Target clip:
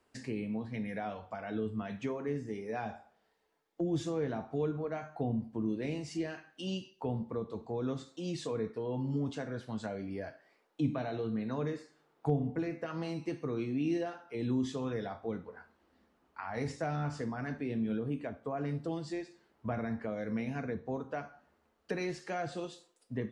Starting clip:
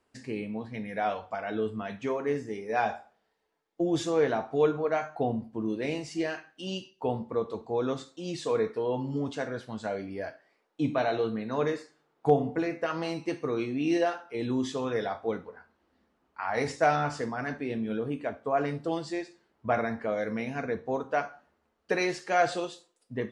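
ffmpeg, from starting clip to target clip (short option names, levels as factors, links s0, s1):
-filter_complex "[0:a]acrossover=split=260[s0][s1];[s1]acompressor=threshold=0.00631:ratio=2.5[s2];[s0][s2]amix=inputs=2:normalize=0,volume=1.12"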